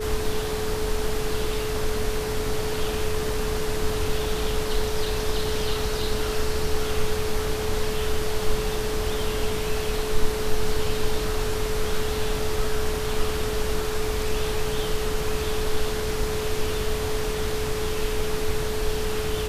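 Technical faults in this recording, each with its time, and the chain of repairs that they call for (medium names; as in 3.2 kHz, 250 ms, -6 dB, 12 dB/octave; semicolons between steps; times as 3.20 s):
whine 430 Hz -28 dBFS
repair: band-stop 430 Hz, Q 30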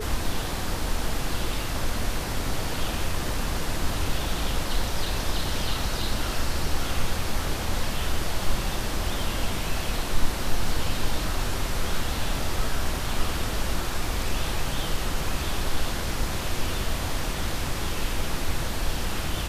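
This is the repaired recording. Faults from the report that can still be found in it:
nothing left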